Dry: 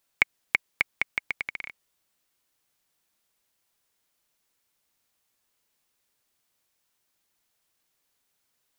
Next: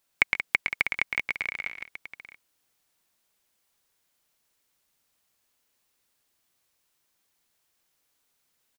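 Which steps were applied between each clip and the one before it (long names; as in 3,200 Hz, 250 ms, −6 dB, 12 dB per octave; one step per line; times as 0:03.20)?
multi-tap delay 112/133/180/647 ms −6/−17.5/−10/−10.5 dB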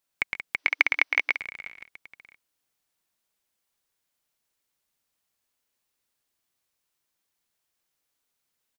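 gain on a spectral selection 0:00.57–0:01.37, 280–6,200 Hz +11 dB
level −6 dB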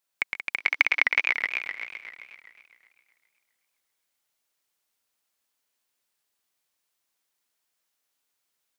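low-shelf EQ 240 Hz −9.5 dB
feedback echo with a swinging delay time 259 ms, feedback 45%, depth 160 cents, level −5 dB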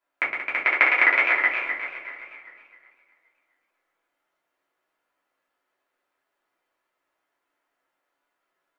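three-way crossover with the lows and the highs turned down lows −15 dB, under 240 Hz, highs −21 dB, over 2,200 Hz
rectangular room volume 150 cubic metres, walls furnished, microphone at 3 metres
level +3.5 dB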